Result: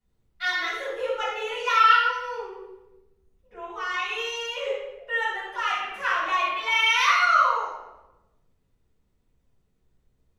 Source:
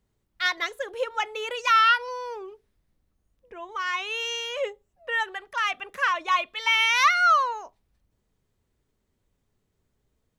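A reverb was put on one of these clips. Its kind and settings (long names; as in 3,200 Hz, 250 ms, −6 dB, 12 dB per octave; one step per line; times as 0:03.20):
rectangular room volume 440 cubic metres, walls mixed, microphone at 7.2 metres
level −14.5 dB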